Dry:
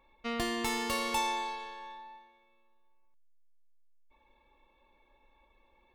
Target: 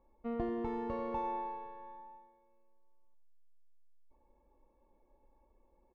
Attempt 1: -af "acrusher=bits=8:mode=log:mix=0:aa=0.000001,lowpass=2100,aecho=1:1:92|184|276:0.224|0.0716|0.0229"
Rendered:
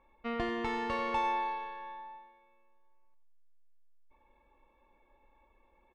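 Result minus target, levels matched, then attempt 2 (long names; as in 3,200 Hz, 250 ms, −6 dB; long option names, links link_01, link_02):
2,000 Hz band +12.5 dB
-af "acrusher=bits=8:mode=log:mix=0:aa=0.000001,lowpass=660,aecho=1:1:92|184|276:0.224|0.0716|0.0229"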